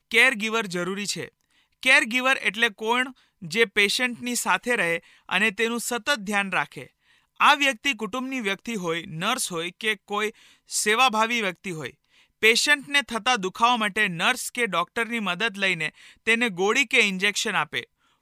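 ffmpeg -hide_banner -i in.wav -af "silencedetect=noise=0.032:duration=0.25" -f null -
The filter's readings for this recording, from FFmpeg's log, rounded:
silence_start: 1.26
silence_end: 1.83 | silence_duration: 0.58
silence_start: 3.08
silence_end: 3.44 | silence_duration: 0.36
silence_start: 4.98
silence_end: 5.29 | silence_duration: 0.31
silence_start: 6.82
silence_end: 7.40 | silence_duration: 0.58
silence_start: 10.30
silence_end: 10.72 | silence_duration: 0.42
silence_start: 11.89
silence_end: 12.42 | silence_duration: 0.54
silence_start: 15.89
silence_end: 16.27 | silence_duration: 0.38
silence_start: 17.83
silence_end: 18.21 | silence_duration: 0.38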